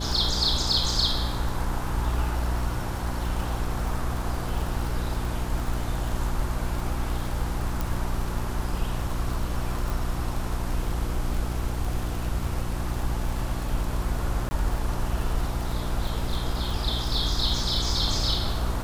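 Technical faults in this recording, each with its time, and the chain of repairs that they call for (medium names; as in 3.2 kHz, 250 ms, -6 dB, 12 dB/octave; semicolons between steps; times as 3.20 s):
crackle 55 per s -30 dBFS
hum 60 Hz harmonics 6 -31 dBFS
7.81 s: pop
9.90 s: pop
14.49–14.51 s: dropout 20 ms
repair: de-click; de-hum 60 Hz, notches 6; interpolate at 14.49 s, 20 ms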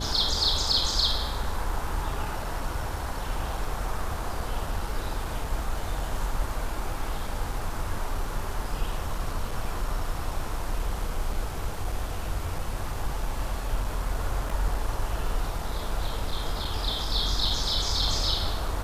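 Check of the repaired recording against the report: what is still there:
7.81 s: pop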